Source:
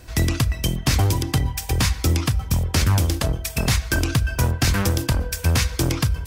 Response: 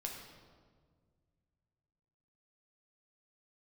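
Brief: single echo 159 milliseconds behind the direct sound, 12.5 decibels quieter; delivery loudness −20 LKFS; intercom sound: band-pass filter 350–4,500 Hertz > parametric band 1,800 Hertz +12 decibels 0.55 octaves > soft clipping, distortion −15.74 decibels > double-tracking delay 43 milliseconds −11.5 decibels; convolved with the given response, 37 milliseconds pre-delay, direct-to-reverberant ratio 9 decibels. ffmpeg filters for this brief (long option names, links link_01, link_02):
-filter_complex "[0:a]aecho=1:1:159:0.237,asplit=2[link_01][link_02];[1:a]atrim=start_sample=2205,adelay=37[link_03];[link_02][link_03]afir=irnorm=-1:irlink=0,volume=-8dB[link_04];[link_01][link_04]amix=inputs=2:normalize=0,highpass=350,lowpass=4500,equalizer=frequency=1800:width_type=o:width=0.55:gain=12,asoftclip=threshold=-14.5dB,asplit=2[link_05][link_06];[link_06]adelay=43,volume=-11.5dB[link_07];[link_05][link_07]amix=inputs=2:normalize=0,volume=5dB"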